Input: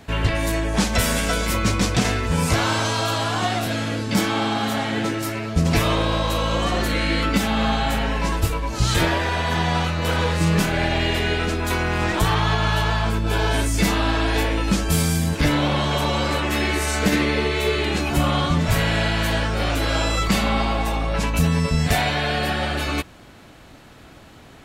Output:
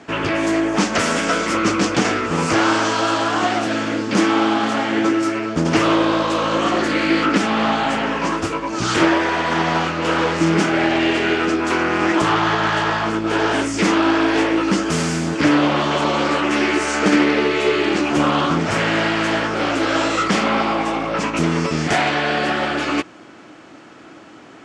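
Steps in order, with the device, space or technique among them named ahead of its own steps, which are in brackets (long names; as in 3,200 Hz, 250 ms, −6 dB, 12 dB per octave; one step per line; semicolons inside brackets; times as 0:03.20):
full-range speaker at full volume (highs frequency-modulated by the lows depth 0.52 ms; loudspeaker in its box 210–7,400 Hz, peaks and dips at 320 Hz +8 dB, 1,300 Hz +4 dB, 3,900 Hz −7 dB)
level +3.5 dB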